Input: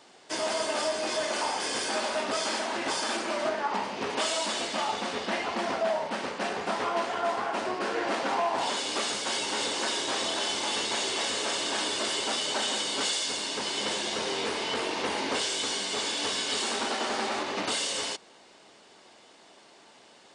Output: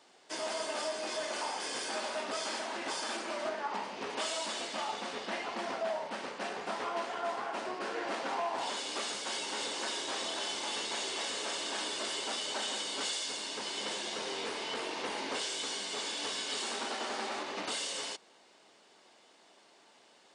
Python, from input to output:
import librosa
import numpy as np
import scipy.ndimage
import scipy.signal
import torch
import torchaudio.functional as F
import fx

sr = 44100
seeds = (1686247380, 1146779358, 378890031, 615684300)

y = fx.highpass(x, sr, hz=200.0, slope=6)
y = y * librosa.db_to_amplitude(-6.5)